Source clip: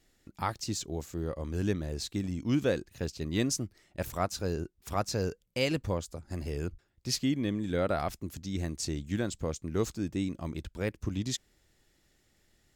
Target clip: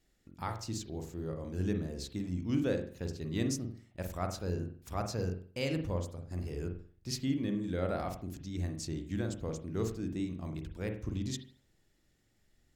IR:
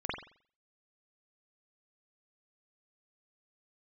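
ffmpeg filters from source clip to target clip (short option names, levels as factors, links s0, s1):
-filter_complex "[0:a]asplit=2[s0][s1];[1:a]atrim=start_sample=2205,lowshelf=f=470:g=10[s2];[s1][s2]afir=irnorm=-1:irlink=0,volume=0.299[s3];[s0][s3]amix=inputs=2:normalize=0,volume=0.376"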